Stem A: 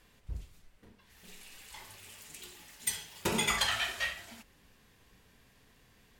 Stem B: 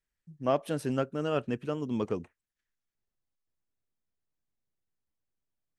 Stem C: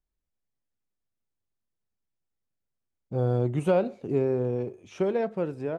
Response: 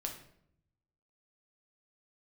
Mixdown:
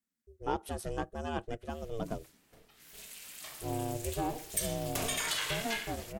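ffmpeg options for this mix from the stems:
-filter_complex "[0:a]highpass=f=100:p=1,adelay=1700,volume=1.26,asplit=2[s0][s1];[s1]volume=0.0891[s2];[1:a]bandreject=f=2500:w=7.2,volume=0.708[s3];[2:a]adelay=500,volume=0.376,asplit=2[s4][s5];[s5]volume=0.355[s6];[s0][s4]amix=inputs=2:normalize=0,alimiter=limit=0.0631:level=0:latency=1:release=112,volume=1[s7];[3:a]atrim=start_sample=2205[s8];[s2][s6]amix=inputs=2:normalize=0[s9];[s9][s8]afir=irnorm=-1:irlink=0[s10];[s3][s7][s10]amix=inputs=3:normalize=0,aemphasis=mode=production:type=cd,aeval=exprs='val(0)*sin(2*PI*230*n/s)':c=same"

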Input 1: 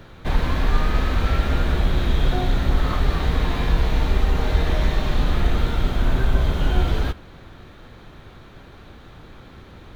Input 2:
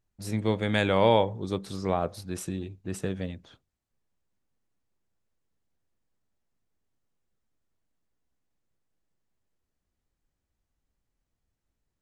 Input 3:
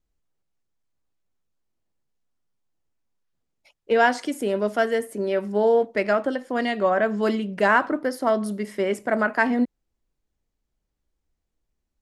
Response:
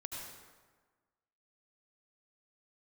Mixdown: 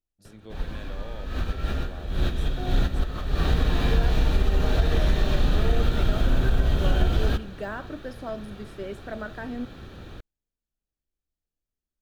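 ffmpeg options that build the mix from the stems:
-filter_complex "[0:a]adelay=250,volume=1.12,asplit=2[s0][s1];[s1]volume=0.075[s2];[1:a]equalizer=f=92:t=o:w=1.8:g=-7,alimiter=limit=0.178:level=0:latency=1:release=33,volume=0.158,asplit=2[s3][s4];[2:a]deesser=0.9,volume=0.266[s5];[s4]apad=whole_len=450007[s6];[s0][s6]sidechaincompress=threshold=0.00112:ratio=12:attack=16:release=153[s7];[3:a]atrim=start_sample=2205[s8];[s2][s8]afir=irnorm=-1:irlink=0[s9];[s7][s3][s5][s9]amix=inputs=4:normalize=0,equalizer=f=980:t=o:w=0.48:g=-6.5,bandreject=f=2100:w=6.7,acompressor=threshold=0.158:ratio=4"

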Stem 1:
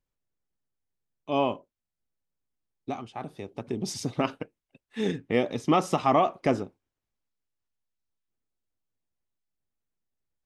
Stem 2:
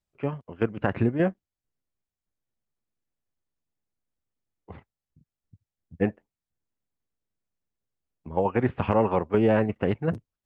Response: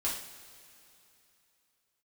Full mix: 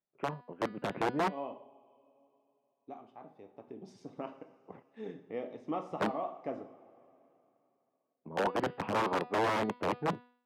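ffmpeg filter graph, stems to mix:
-filter_complex "[0:a]volume=0.168,asplit=2[s0][s1];[s1]volume=0.447[s2];[1:a]lowshelf=f=100:t=q:w=1.5:g=-12.5,aeval=exprs='(mod(6.68*val(0)+1,2)-1)/6.68':c=same,bandreject=f=245.1:t=h:w=4,bandreject=f=490.2:t=h:w=4,bandreject=f=735.3:t=h:w=4,bandreject=f=980.4:t=h:w=4,bandreject=f=1225.5:t=h:w=4,bandreject=f=1470.6:t=h:w=4,bandreject=f=1715.7:t=h:w=4,bandreject=f=1960.8:t=h:w=4,bandreject=f=2205.9:t=h:w=4,bandreject=f=2451:t=h:w=4,bandreject=f=2696.1:t=h:w=4,bandreject=f=2941.2:t=h:w=4,bandreject=f=3186.3:t=h:w=4,bandreject=f=3431.4:t=h:w=4,bandreject=f=3676.5:t=h:w=4,bandreject=f=3921.6:t=h:w=4,bandreject=f=4166.7:t=h:w=4,bandreject=f=4411.8:t=h:w=4,bandreject=f=4656.9:t=h:w=4,bandreject=f=4902:t=h:w=4,volume=0.708,asplit=2[s3][s4];[s4]apad=whole_len=461135[s5];[s0][s5]sidechaincompress=threshold=0.02:ratio=8:attack=16:release=287[s6];[2:a]atrim=start_sample=2205[s7];[s2][s7]afir=irnorm=-1:irlink=0[s8];[s6][s3][s8]amix=inputs=3:normalize=0,bandpass=f=570:t=q:w=0.66:csg=0"

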